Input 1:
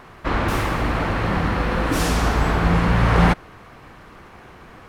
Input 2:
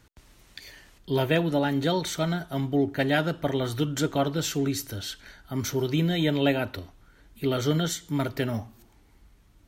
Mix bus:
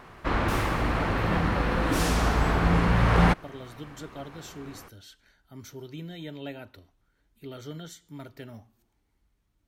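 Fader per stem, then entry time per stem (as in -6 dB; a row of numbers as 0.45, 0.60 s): -4.5, -15.0 dB; 0.00, 0.00 s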